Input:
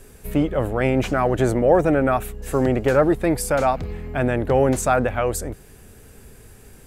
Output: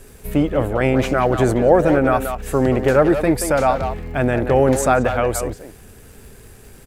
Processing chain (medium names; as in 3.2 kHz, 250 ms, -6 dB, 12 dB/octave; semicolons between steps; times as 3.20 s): speakerphone echo 180 ms, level -7 dB; crackle 160 per s -42 dBFS; trim +2.5 dB